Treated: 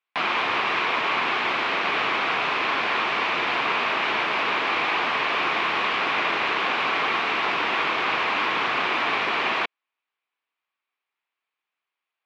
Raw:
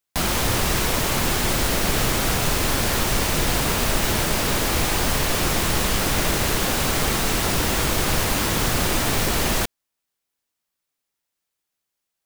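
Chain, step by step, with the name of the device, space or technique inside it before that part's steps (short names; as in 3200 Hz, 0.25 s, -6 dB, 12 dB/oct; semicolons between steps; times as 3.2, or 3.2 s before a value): phone earpiece (speaker cabinet 480–3300 Hz, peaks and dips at 550 Hz -6 dB, 1100 Hz +6 dB, 2400 Hz +6 dB); gain +1 dB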